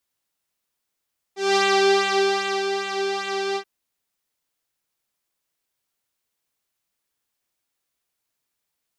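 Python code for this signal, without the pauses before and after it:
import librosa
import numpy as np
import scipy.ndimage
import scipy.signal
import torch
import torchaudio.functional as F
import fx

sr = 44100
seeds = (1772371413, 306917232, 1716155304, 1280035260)

y = fx.sub_patch_pwm(sr, seeds[0], note=67, wave2='saw', interval_st=0, detune_cents=16, level2_db=-9.0, sub_db=-24.0, noise_db=-27.5, kind='lowpass', cutoff_hz=4300.0, q=1.7, env_oct=0.5, env_decay_s=0.27, env_sustain_pct=40, attack_ms=198.0, decay_s=1.15, sustain_db=-9, release_s=0.08, note_s=2.2, lfo_hz=2.5, width_pct=24, width_swing_pct=17)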